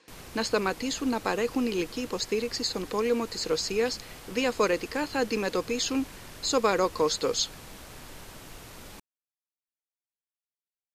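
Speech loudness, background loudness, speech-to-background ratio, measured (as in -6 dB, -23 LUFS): -28.5 LUFS, -45.5 LUFS, 17.0 dB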